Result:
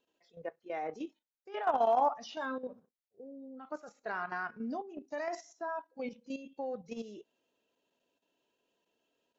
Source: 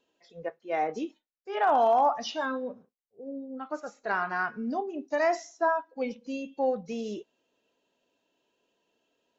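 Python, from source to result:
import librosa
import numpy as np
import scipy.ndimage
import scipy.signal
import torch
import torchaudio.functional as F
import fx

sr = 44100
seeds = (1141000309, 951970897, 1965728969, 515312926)

y = fx.level_steps(x, sr, step_db=11)
y = F.gain(torch.from_numpy(y), -3.5).numpy()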